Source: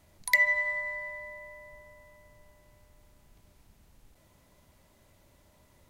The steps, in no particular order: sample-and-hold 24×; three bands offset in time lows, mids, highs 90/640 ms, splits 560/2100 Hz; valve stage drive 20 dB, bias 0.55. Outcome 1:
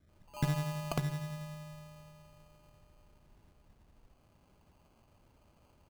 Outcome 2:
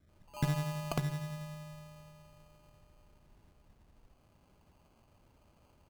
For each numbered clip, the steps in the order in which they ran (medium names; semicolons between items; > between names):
three bands offset in time > valve stage > sample-and-hold; three bands offset in time > sample-and-hold > valve stage